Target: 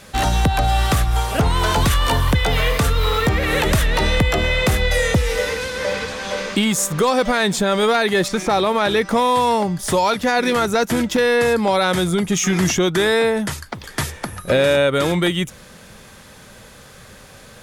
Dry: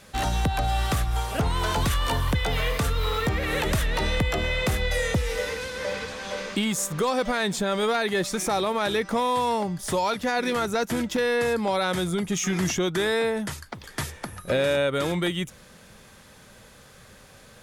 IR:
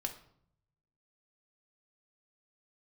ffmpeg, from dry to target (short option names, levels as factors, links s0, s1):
-filter_complex "[0:a]asettb=1/sr,asplit=3[s0][s1][s2];[s0]atrim=end=8.284[s3];[s1]atrim=start=8.28:end=8.97,asetpts=PTS-STARTPTS,afade=t=in:d=0.004:c=qsin,afade=t=out:st=0.686:d=0.004:c=qsin,acrossover=split=4800[s4][s5];[s5]acompressor=threshold=0.00562:ratio=4:attack=1:release=60[s6];[s4][s6]amix=inputs=2:normalize=0[s7];[s2]atrim=start=8.966[s8];[s3][s7]acrossfade=d=0.004:c1=hsin:c2=qsin[s9];[s9][s8]acrossfade=d=0.004:c1=qsin:c2=hsin,volume=2.37"